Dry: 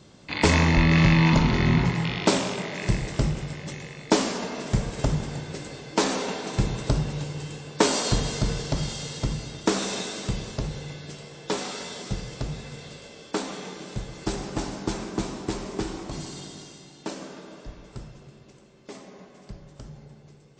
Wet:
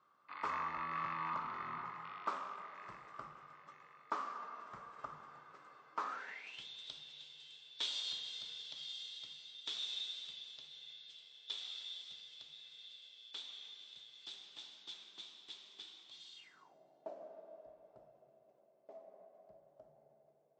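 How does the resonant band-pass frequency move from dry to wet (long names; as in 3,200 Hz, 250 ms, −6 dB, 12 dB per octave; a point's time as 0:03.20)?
resonant band-pass, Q 11
0:06.07 1,200 Hz
0:06.66 3,500 Hz
0:16.35 3,500 Hz
0:16.75 650 Hz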